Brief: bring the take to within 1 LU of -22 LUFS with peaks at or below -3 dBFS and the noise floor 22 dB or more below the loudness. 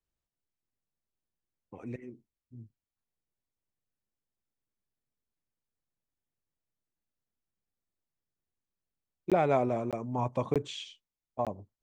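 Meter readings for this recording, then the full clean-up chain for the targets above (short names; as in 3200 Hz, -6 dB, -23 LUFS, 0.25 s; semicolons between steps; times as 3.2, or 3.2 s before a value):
dropouts 4; longest dropout 17 ms; loudness -32.0 LUFS; peak -15.0 dBFS; loudness target -22.0 LUFS
-> interpolate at 9.3/9.91/10.54/11.45, 17 ms; gain +10 dB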